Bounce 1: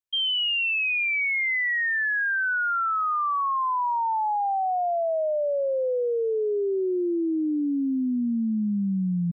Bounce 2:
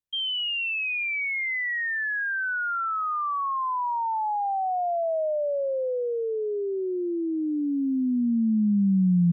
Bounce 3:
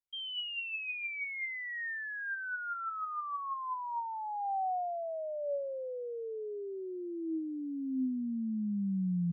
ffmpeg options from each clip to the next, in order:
-filter_complex "[0:a]lowshelf=f=350:g=11.5,acrossover=split=240|570|1600[s0][s1][s2][s3];[s1]alimiter=level_in=1.5:limit=0.0631:level=0:latency=1,volume=0.668[s4];[s0][s4][s2][s3]amix=inputs=4:normalize=0,volume=0.668"
-af "flanger=delay=1.3:depth=5.6:regen=65:speed=0.22:shape=sinusoidal,volume=0.501"

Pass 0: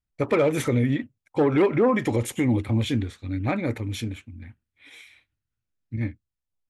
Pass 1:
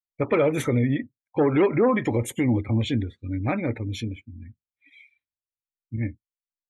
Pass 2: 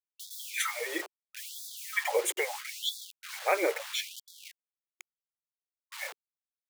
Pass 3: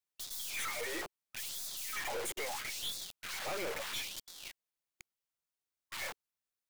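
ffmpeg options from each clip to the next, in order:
-af "afftdn=nr=27:nf=-41"
-af "acompressor=threshold=0.0891:ratio=6,acrusher=bits=6:mix=0:aa=0.000001,afftfilt=real='re*gte(b*sr/1024,330*pow(3400/330,0.5+0.5*sin(2*PI*0.76*pts/sr)))':imag='im*gte(b*sr/1024,330*pow(3400/330,0.5+0.5*sin(2*PI*0.76*pts/sr)))':win_size=1024:overlap=0.75,volume=1.68"
-af "aeval=exprs='(tanh(112*val(0)+0.45)-tanh(0.45))/112':c=same,volume=1.68"

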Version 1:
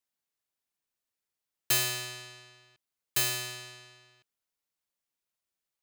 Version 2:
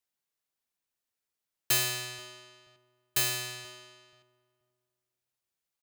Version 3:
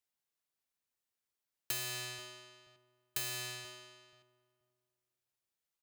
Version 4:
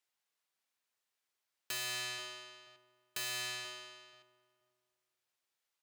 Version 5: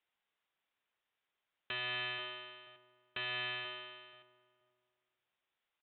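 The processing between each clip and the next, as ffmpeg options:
-filter_complex "[0:a]asplit=2[s0][s1];[s1]adelay=481,lowpass=f=1000:p=1,volume=0.15,asplit=2[s2][s3];[s3]adelay=481,lowpass=f=1000:p=1,volume=0.26,asplit=2[s4][s5];[s5]adelay=481,lowpass=f=1000:p=1,volume=0.26[s6];[s0][s2][s4][s6]amix=inputs=4:normalize=0"
-af "acompressor=threshold=0.0251:ratio=6,volume=0.708"
-filter_complex "[0:a]asplit=2[s0][s1];[s1]highpass=f=720:p=1,volume=5.62,asoftclip=type=tanh:threshold=0.0668[s2];[s0][s2]amix=inputs=2:normalize=0,lowpass=f=5100:p=1,volume=0.501,volume=0.668"
-af "aresample=8000,aresample=44100,volume=1.41"

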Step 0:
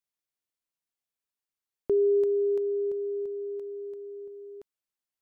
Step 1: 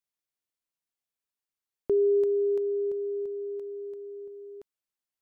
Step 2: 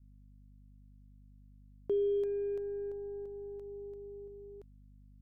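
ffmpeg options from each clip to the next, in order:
-af anull
-af "aeval=exprs='0.112*(cos(1*acos(clip(val(0)/0.112,-1,1)))-cos(1*PI/2))+0.00141*(cos(8*acos(clip(val(0)/0.112,-1,1)))-cos(8*PI/2))':c=same,aeval=exprs='val(0)+0.00316*(sin(2*PI*50*n/s)+sin(2*PI*2*50*n/s)/2+sin(2*PI*3*50*n/s)/3+sin(2*PI*4*50*n/s)/4+sin(2*PI*5*50*n/s)/5)':c=same,adynamicequalizer=threshold=0.0158:dfrequency=390:dqfactor=2.4:tfrequency=390:tqfactor=2.4:attack=5:release=100:ratio=0.375:range=2:mode=cutabove:tftype=bell,volume=0.473"

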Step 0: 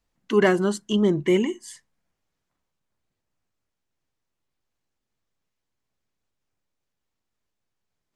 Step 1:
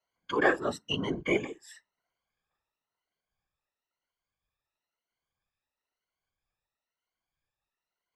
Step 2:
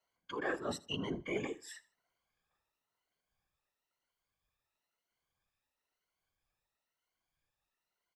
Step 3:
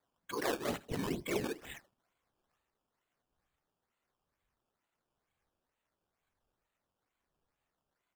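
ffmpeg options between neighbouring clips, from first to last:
-filter_complex "[0:a]afftfilt=real='re*pow(10,21/40*sin(2*PI*(1.9*log(max(b,1)*sr/1024/100)/log(2)-(1)*(pts-256)/sr)))':imag='im*pow(10,21/40*sin(2*PI*(1.9*log(max(b,1)*sr/1024/100)/log(2)-(1)*(pts-256)/sr)))':win_size=1024:overlap=0.75,acrossover=split=520 4900:gain=0.224 1 0.224[s0][s1][s2];[s0][s1][s2]amix=inputs=3:normalize=0,afftfilt=real='hypot(re,im)*cos(2*PI*random(0))':imag='hypot(re,im)*sin(2*PI*random(1))':win_size=512:overlap=0.75"
-af "areverse,acompressor=threshold=0.0141:ratio=4,areverse,aecho=1:1:79|158:0.0891|0.0267,volume=1.12"
-af "acrusher=samples=15:mix=1:aa=0.000001:lfo=1:lforange=15:lforate=2.2,volume=1.26"

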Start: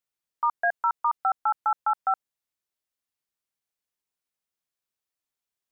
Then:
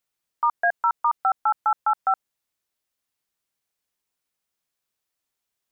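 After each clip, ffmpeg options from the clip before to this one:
-af "alimiter=limit=0.112:level=0:latency=1,volume=2"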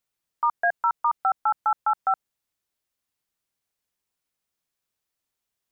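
-af "lowshelf=f=240:g=4,volume=0.841"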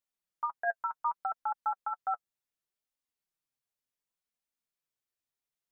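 -af "flanger=delay=3.2:depth=5.8:regen=24:speed=0.67:shape=triangular,volume=0.501"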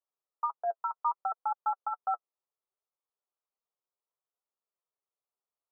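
-af "asuperpass=centerf=700:order=20:qfactor=0.7,volume=1.26"

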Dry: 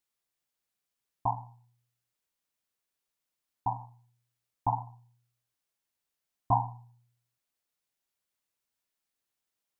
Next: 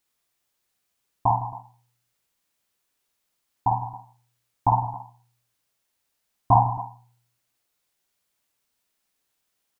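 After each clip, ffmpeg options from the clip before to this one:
-af "aecho=1:1:52|158|195|273:0.631|0.2|0.119|0.133,volume=2.51"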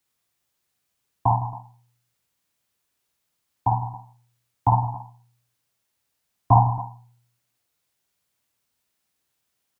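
-filter_complex "[0:a]highpass=61,acrossover=split=170|430[s0][s1][s2];[s0]acontrast=64[s3];[s3][s1][s2]amix=inputs=3:normalize=0"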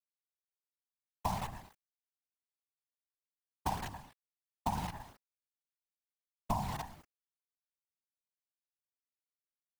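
-af "acrusher=bits=5:dc=4:mix=0:aa=0.000001,afftfilt=real='hypot(re,im)*cos(2*PI*random(0))':imag='hypot(re,im)*sin(2*PI*random(1))':win_size=512:overlap=0.75,acompressor=threshold=0.0282:ratio=10"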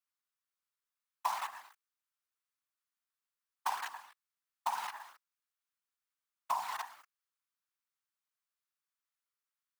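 -af "highpass=f=1200:t=q:w=2.3,volume=1.12"

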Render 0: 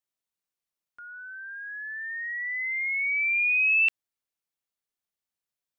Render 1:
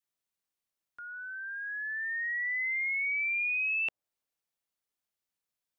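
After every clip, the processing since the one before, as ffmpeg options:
-filter_complex "[0:a]adynamicequalizer=threshold=0.00355:dfrequency=610:dqfactor=1.1:tfrequency=610:tqfactor=1.1:attack=5:release=100:ratio=0.375:range=3:mode=boostabove:tftype=bell,acrossover=split=1200[s0][s1];[s1]acompressor=threshold=0.0282:ratio=6[s2];[s0][s2]amix=inputs=2:normalize=0"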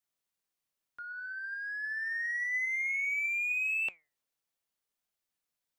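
-filter_complex "[0:a]asplit=2[s0][s1];[s1]asoftclip=type=tanh:threshold=0.0112,volume=0.501[s2];[s0][s2]amix=inputs=2:normalize=0,flanger=delay=1.3:depth=6.2:regen=86:speed=0.59:shape=sinusoidal,volume=1.26"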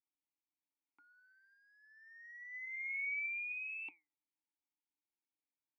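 -filter_complex "[0:a]asplit=3[s0][s1][s2];[s0]bandpass=f=300:t=q:w=8,volume=1[s3];[s1]bandpass=f=870:t=q:w=8,volume=0.501[s4];[s2]bandpass=f=2240:t=q:w=8,volume=0.355[s5];[s3][s4][s5]amix=inputs=3:normalize=0,volume=1.33"

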